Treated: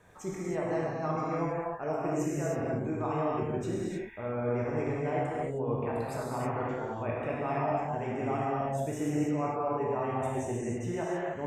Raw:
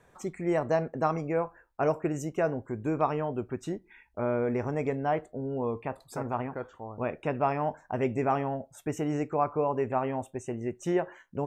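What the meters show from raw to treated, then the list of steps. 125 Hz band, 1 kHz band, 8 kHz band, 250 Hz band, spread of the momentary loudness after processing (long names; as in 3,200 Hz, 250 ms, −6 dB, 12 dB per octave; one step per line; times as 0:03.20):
+0.5 dB, −2.0 dB, +2.5 dB, −1.0 dB, 4 LU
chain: reversed playback
downward compressor, threshold −34 dBFS, peak gain reduction 13 dB
reversed playback
reverb whose tail is shaped and stops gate 340 ms flat, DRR −6 dB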